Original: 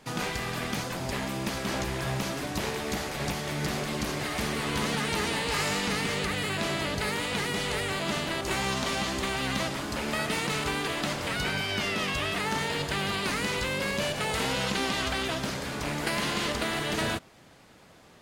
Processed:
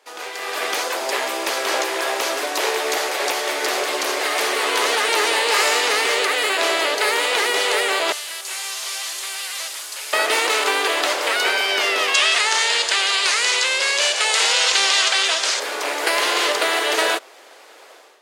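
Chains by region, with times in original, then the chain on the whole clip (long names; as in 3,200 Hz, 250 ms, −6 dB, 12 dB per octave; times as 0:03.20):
0:08.12–0:10.13: linear delta modulator 64 kbit/s, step −40 dBFS + first-order pre-emphasis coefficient 0.97
0:12.14–0:15.60: low-pass filter 8,000 Hz 24 dB per octave + spectral tilt +4 dB per octave
whole clip: automatic gain control gain up to 13.5 dB; Butterworth high-pass 380 Hz 36 dB per octave; level −1 dB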